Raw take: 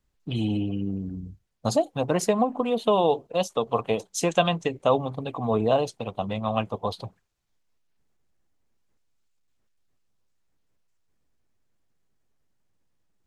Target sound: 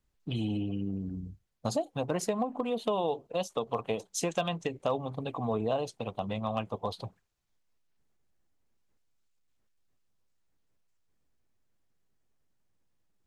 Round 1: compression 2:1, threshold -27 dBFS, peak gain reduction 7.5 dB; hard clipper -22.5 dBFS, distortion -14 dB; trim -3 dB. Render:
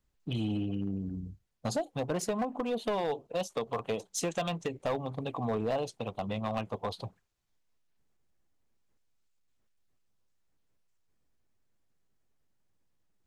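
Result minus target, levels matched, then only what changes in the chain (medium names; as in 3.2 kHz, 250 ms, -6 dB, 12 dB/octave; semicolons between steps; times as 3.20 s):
hard clipper: distortion +17 dB
change: hard clipper -16.5 dBFS, distortion -31 dB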